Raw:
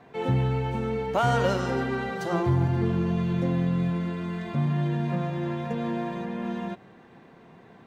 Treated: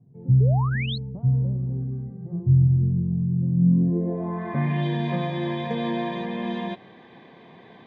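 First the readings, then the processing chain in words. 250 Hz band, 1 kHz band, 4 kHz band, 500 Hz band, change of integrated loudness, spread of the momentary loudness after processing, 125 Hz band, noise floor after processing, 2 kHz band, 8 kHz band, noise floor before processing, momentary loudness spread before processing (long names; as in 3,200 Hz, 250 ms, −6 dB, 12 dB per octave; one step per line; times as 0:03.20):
+2.5 dB, −3.5 dB, +3.0 dB, −3.5 dB, +3.5 dB, 11 LU, +6.0 dB, −49 dBFS, −1.5 dB, can't be measured, −52 dBFS, 8 LU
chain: low-pass filter sweep 130 Hz → 3,500 Hz, 0:03.53–0:04.86
sound drawn into the spectrogram rise, 0:00.40–0:00.98, 390–4,400 Hz −35 dBFS
notch comb filter 1,400 Hz
level +3.5 dB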